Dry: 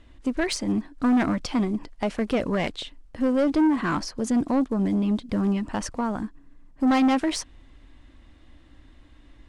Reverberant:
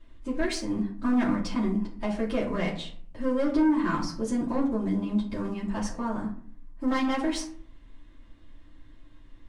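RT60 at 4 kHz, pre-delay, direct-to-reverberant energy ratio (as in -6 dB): 0.30 s, 3 ms, -11.0 dB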